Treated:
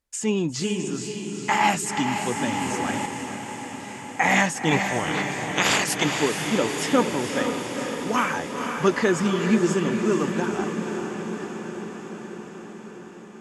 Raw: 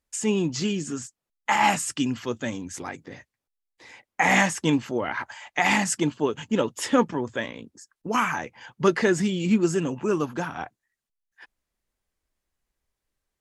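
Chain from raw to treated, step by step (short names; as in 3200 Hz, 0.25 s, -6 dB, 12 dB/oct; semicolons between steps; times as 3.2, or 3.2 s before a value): 4.7–6.03 spectral limiter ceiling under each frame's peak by 22 dB; diffused feedback echo 0.478 s, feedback 71%, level -6 dB; 1.97–3.06 three-band squash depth 100%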